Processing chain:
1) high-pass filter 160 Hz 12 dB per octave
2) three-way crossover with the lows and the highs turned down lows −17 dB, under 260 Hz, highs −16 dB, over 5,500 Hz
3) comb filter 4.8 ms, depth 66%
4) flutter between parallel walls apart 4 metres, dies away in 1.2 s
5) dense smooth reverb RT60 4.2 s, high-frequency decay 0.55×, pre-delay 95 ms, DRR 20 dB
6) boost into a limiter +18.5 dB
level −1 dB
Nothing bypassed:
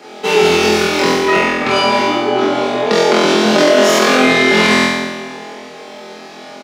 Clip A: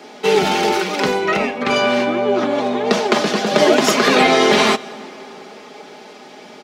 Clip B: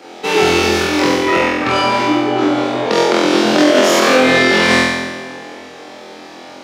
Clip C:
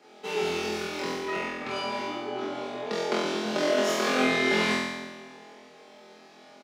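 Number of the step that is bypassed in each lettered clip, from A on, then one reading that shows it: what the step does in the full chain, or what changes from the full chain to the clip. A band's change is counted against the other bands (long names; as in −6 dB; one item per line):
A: 4, change in momentary loudness spread −5 LU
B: 3, 250 Hz band +2.0 dB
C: 6, change in crest factor +5.0 dB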